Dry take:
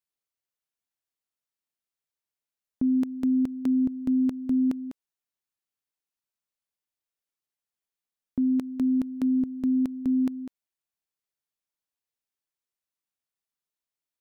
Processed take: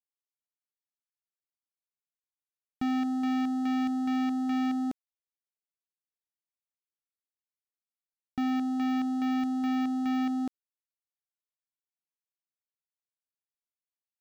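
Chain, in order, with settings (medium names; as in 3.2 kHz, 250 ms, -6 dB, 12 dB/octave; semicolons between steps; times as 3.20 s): waveshaping leveller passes 5; trim -7.5 dB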